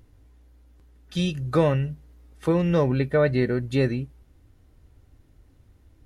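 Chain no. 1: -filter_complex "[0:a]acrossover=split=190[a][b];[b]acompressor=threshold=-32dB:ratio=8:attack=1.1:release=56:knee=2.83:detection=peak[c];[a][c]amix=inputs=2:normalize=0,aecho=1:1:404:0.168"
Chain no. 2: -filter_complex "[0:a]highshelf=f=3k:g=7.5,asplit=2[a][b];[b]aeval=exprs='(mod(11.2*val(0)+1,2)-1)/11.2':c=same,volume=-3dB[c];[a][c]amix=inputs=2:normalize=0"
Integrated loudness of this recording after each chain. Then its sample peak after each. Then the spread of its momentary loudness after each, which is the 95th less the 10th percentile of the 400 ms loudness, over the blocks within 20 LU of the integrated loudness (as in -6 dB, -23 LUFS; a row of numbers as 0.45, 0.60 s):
-29.5, -22.5 LUFS; -16.5, -8.5 dBFS; 12, 10 LU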